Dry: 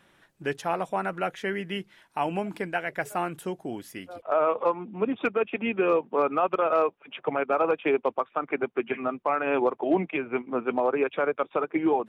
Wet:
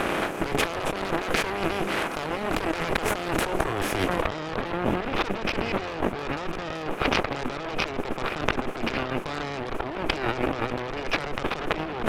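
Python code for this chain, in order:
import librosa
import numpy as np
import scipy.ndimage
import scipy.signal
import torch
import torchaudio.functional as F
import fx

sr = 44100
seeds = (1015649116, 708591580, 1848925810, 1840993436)

y = fx.bin_compress(x, sr, power=0.4)
y = fx.cheby_harmonics(y, sr, harmonics=(8,), levels_db=(-11,), full_scale_db=-4.5)
y = fx.over_compress(y, sr, threshold_db=-26.0, ratio=-1.0)
y = y * librosa.db_to_amplitude(-2.5)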